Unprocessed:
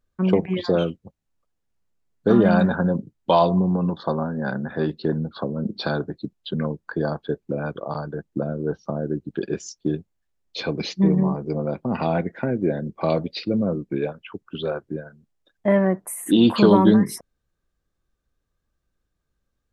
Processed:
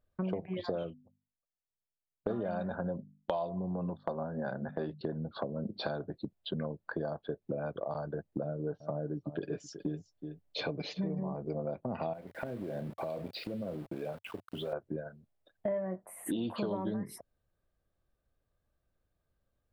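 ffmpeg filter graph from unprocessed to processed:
ffmpeg -i in.wav -filter_complex "[0:a]asettb=1/sr,asplit=3[link_01][link_02][link_03];[link_01]atrim=end=0.834[link_04];[link_02]atrim=start=0.83:end=5.01,asetpts=PTS-STARTPTS,afade=type=in:duration=0.004:curve=qsin,afade=type=out:start_time=4.176:duration=0.004:curve=qsin,agate=range=-19dB:threshold=-34dB:ratio=16:release=100:detection=peak,bandreject=frequency=50:width_type=h:width=6,bandreject=frequency=100:width_type=h:width=6,bandreject=frequency=150:width_type=h:width=6,bandreject=frequency=200:width_type=h:width=6,bandreject=frequency=250:width_type=h:width=6[link_05];[link_03]atrim=start=5.006[link_06];[link_04][link_05]acrossfade=duration=0.004:curve1=hsin:curve2=qsin[link_07];[link_07][link_06]acrossfade=duration=0.004:curve1=qsin:curve2=hsin,asettb=1/sr,asplit=3[link_08][link_09][link_10];[link_08]atrim=end=8.434[link_11];[link_09]atrim=start=8.43:end=11.19,asetpts=PTS-STARTPTS,afade=type=in:duration=0.004:curve=qsin,afade=type=out:start_time=2.756:duration=0.004:curve=qsin,aecho=1:1:6.8:0.48,atrim=end_sample=121716,aecho=1:1:372:0.133,atrim=end_sample=121716[link_12];[link_10]atrim=start=11.186[link_13];[link_11][link_12]acrossfade=duration=0.004:curve1=hsin:curve2=qsin[link_14];[link_14][link_13]acrossfade=duration=0.004:curve1=qsin:curve2=hsin,asettb=1/sr,asplit=3[link_15][link_16][link_17];[link_15]atrim=end=12.134[link_18];[link_16]atrim=start=12.13:end=14.73,asetpts=PTS-STARTPTS,afade=type=in:duration=0.004:curve=qsin,afade=type=out:start_time=2.596:duration=0.004:curve=qsin,asplit=2[link_19][link_20];[link_20]adelay=33,volume=-12dB[link_21];[link_19][link_21]amix=inputs=2:normalize=0,atrim=end_sample=114660,acompressor=threshold=-30dB:ratio=16:attack=3.2:release=140:knee=1:detection=peak,aeval=exprs='val(0)*gte(abs(val(0)),0.00562)':channel_layout=same[link_22];[link_17]atrim=start=14.726[link_23];[link_18][link_22]acrossfade=duration=0.004:curve1=hsin:curve2=qsin[link_24];[link_24][link_23]acrossfade=duration=0.004:curve1=qsin:curve2=hsin,asettb=1/sr,asplit=3[link_25][link_26][link_27];[link_25]atrim=end=15.694[link_28];[link_26]atrim=start=15.69:end=16.25,asetpts=PTS-STARTPTS,afade=type=in:duration=0.004:curve=qsin,afade=type=out:start_time=0.556:duration=0.004:curve=qsin,highshelf=frequency=5600:gain=-11,asplit=2[link_29][link_30];[link_30]adelay=22,volume=-6dB[link_31];[link_29][link_31]amix=inputs=2:normalize=0,atrim=end_sample=24696[link_32];[link_27]atrim=start=16.246[link_33];[link_28][link_32]acrossfade=duration=0.004:curve1=hsin:curve2=qsin[link_34];[link_34][link_33]acrossfade=duration=0.004:curve1=qsin:curve2=hsin,equalizer=frequency=100:width_type=o:width=0.67:gain=6,equalizer=frequency=630:width_type=o:width=0.67:gain=9,equalizer=frequency=6300:width_type=o:width=0.67:gain=-8,acompressor=threshold=-28dB:ratio=6,volume=-5dB" out.wav

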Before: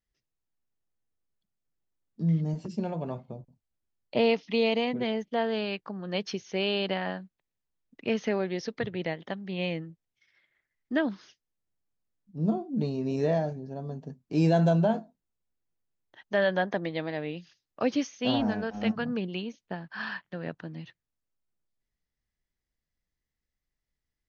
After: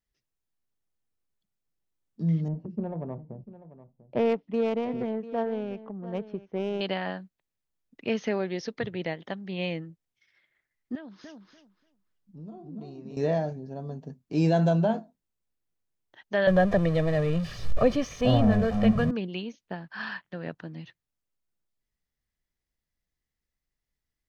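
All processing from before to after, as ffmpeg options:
ffmpeg -i in.wav -filter_complex "[0:a]asettb=1/sr,asplit=3[link_01][link_02][link_03];[link_01]atrim=end=2.484[link_04];[link_02]atrim=start=2.48:end=6.81,asetpts=PTS-STARTPTS,afade=type=in:duration=0.004:curve=qsin,afade=type=out:start_time=4.326:duration=0.004:curve=qsin,adynamicsmooth=sensitivity=0.5:basefreq=700,aecho=1:1:694:0.168,atrim=end_sample=190953[link_05];[link_03]atrim=start=6.806[link_06];[link_04][link_05]acrossfade=duration=0.004:curve1=hsin:curve2=qsin[link_07];[link_07][link_06]acrossfade=duration=0.004:curve1=qsin:curve2=hsin,asettb=1/sr,asplit=3[link_08][link_09][link_10];[link_08]atrim=end=10.954[link_11];[link_09]atrim=start=10.95:end=13.17,asetpts=PTS-STARTPTS,afade=type=in:duration=0.004:curve=qsin,afade=type=out:start_time=2.216:duration=0.004:curve=qsin,acompressor=threshold=-45dB:ratio=3:attack=3.2:release=140:knee=1:detection=peak,asplit=2[link_12][link_13];[link_13]adelay=291,lowpass=frequency=3500:poles=1,volume=-3dB,asplit=2[link_14][link_15];[link_15]adelay=291,lowpass=frequency=3500:poles=1,volume=0.21,asplit=2[link_16][link_17];[link_17]adelay=291,lowpass=frequency=3500:poles=1,volume=0.21[link_18];[link_12][link_14][link_16][link_18]amix=inputs=4:normalize=0,atrim=end_sample=97902[link_19];[link_10]atrim=start=13.166[link_20];[link_11][link_19]acrossfade=duration=0.004:curve1=hsin:curve2=qsin[link_21];[link_21][link_20]acrossfade=duration=0.004:curve1=qsin:curve2=hsin,asettb=1/sr,asplit=3[link_22][link_23][link_24];[link_22]atrim=end=16.474[link_25];[link_23]atrim=start=16.47:end=19.11,asetpts=PTS-STARTPTS,afade=type=in:duration=0.004:curve=qsin,afade=type=out:start_time=2.636:duration=0.004:curve=qsin,aeval=exprs='val(0)+0.5*0.0211*sgn(val(0))':channel_layout=same,aemphasis=mode=reproduction:type=riaa,aecho=1:1:1.7:0.62,atrim=end_sample=116424[link_26];[link_24]atrim=start=19.106[link_27];[link_25][link_26]acrossfade=duration=0.004:curve1=hsin:curve2=qsin[link_28];[link_28][link_27]acrossfade=duration=0.004:curve1=qsin:curve2=hsin" out.wav

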